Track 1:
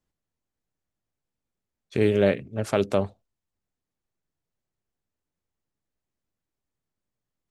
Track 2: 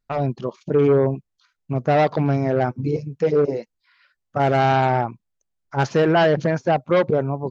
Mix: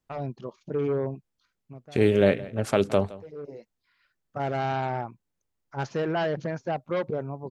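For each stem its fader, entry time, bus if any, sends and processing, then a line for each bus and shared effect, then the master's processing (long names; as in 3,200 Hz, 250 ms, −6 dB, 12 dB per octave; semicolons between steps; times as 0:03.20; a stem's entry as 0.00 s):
+0.5 dB, 0.00 s, no send, echo send −19 dB, no processing
−10.5 dB, 0.00 s, no send, no echo send, automatic ducking −20 dB, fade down 0.35 s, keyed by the first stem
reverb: not used
echo: single-tap delay 168 ms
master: no processing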